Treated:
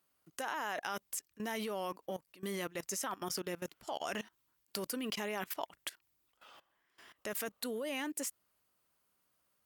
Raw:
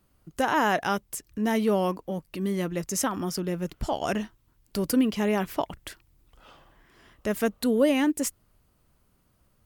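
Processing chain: HPF 930 Hz 6 dB/oct; high shelf 11000 Hz +2.5 dB; level quantiser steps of 20 dB; gain +2 dB

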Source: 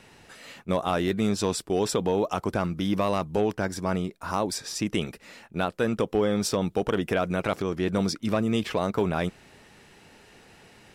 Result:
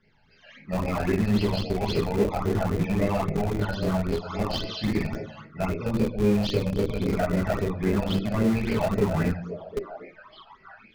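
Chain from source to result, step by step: nonlinear frequency compression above 1300 Hz 1.5:1; shoebox room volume 83 m³, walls mixed, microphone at 1.5 m; 5.72–7.19 spectral gain 640–2100 Hz -14 dB; delay with a stepping band-pass 0.745 s, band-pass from 510 Hz, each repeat 1.4 oct, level -6 dB; phaser stages 12, 3.7 Hz, lowest notch 340–1200 Hz; 4.05–5.42 high shelf 6800 Hz +9.5 dB; spectral noise reduction 10 dB; in parallel at -4 dB: Schmitt trigger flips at -18 dBFS; on the sum: gain -5.5 dB

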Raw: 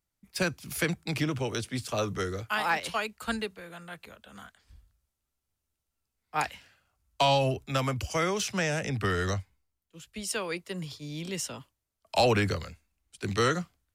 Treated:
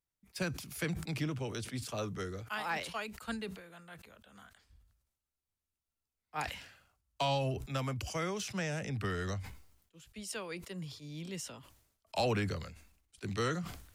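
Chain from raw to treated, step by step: dynamic EQ 160 Hz, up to +4 dB, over -40 dBFS, Q 0.89; sustainer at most 78 dB/s; gain -9 dB

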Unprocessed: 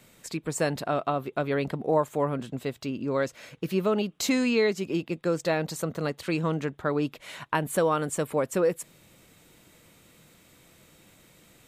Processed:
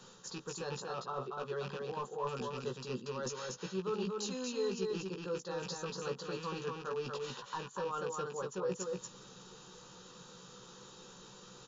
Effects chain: rattling part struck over -31 dBFS, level -22 dBFS; low shelf 290 Hz -8.5 dB; reverse; compressor 12:1, threshold -41 dBFS, peak gain reduction 21.5 dB; reverse; hard clip -35.5 dBFS, distortion -22 dB; fixed phaser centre 430 Hz, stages 8; doubler 16 ms -5 dB; on a send: echo 0.236 s -3.5 dB; on the sum: gain +7 dB; WMA 128 kbps 16000 Hz

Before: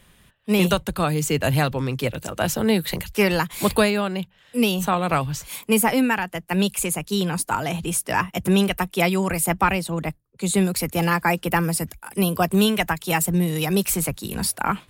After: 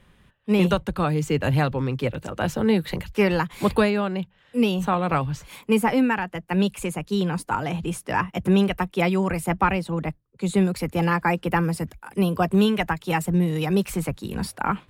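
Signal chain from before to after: LPF 1900 Hz 6 dB/oct; notch 660 Hz, Q 12

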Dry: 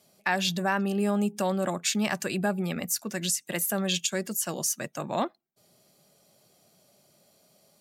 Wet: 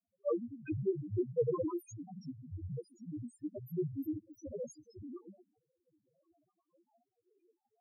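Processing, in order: HPF 45 Hz 12 dB/oct; Schroeder reverb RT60 0.5 s, combs from 26 ms, DRR 12 dB; step gate ".x.x.xxx.x" 64 bpm -12 dB; grains 0.1 s, grains 20/s, pitch spread up and down by 12 st; loudest bins only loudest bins 1; bell 460 Hz +14.5 dB 1.5 oct; gain -4.5 dB

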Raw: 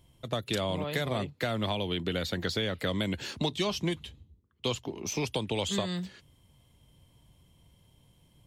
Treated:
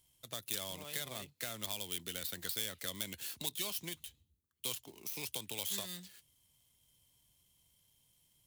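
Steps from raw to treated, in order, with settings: switching dead time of 0.058 ms; pre-emphasis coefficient 0.9; gain +1.5 dB

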